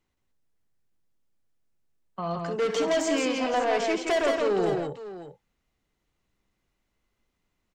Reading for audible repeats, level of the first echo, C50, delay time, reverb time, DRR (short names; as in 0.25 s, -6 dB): 4, -12.0 dB, none, 65 ms, none, none